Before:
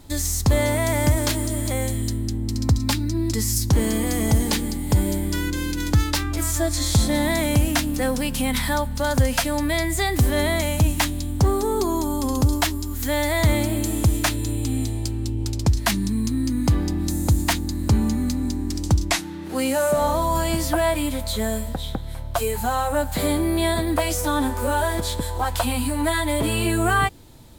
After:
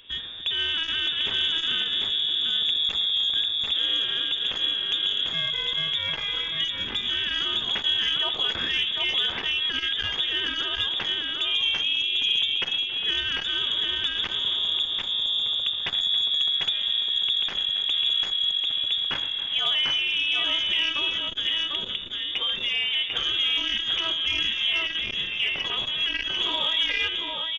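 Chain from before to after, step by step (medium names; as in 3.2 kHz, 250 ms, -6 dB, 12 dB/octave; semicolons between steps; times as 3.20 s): peak limiter -16.5 dBFS, peak gain reduction 8.5 dB; high-pass 130 Hz 12 dB/octave; on a send: multi-tap echo 83/118/275/746 ms -17/-19.5/-17/-3.5 dB; on the sum: frequency inversion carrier 3.6 kHz; transformer saturation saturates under 970 Hz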